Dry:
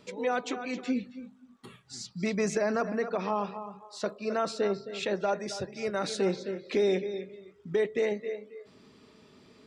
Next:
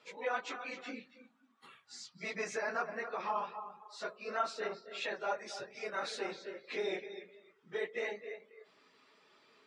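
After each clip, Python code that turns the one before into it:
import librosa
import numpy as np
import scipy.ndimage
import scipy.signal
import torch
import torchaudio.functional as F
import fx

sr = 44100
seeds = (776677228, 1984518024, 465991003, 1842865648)

y = fx.phase_scramble(x, sr, seeds[0], window_ms=50)
y = scipy.signal.sosfilt(scipy.signal.butter(2, 1400.0, 'highpass', fs=sr, output='sos'), y)
y = fx.tilt_eq(y, sr, slope=-4.5)
y = y * 10.0 ** (3.5 / 20.0)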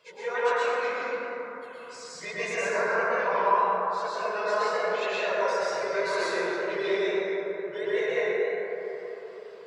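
y = x + 0.71 * np.pad(x, (int(1.9 * sr / 1000.0), 0))[:len(x)]
y = fx.wow_flutter(y, sr, seeds[1], rate_hz=2.1, depth_cents=120.0)
y = fx.rev_plate(y, sr, seeds[2], rt60_s=3.9, hf_ratio=0.25, predelay_ms=100, drr_db=-9.5)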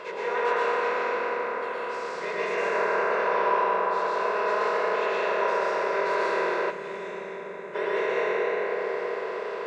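y = fx.bin_compress(x, sr, power=0.4)
y = fx.bass_treble(y, sr, bass_db=-2, treble_db=-11)
y = fx.spec_box(y, sr, start_s=6.7, length_s=1.05, low_hz=270.0, high_hz=6200.0, gain_db=-9)
y = y * 10.0 ** (-4.5 / 20.0)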